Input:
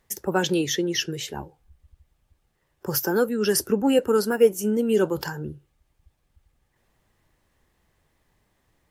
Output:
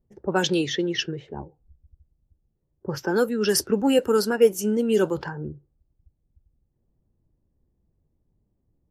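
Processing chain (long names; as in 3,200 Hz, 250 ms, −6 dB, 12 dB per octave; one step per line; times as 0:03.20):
low-pass that shuts in the quiet parts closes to 310 Hz, open at −17 dBFS
dynamic equaliser 4,400 Hz, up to +4 dB, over −44 dBFS, Q 1.1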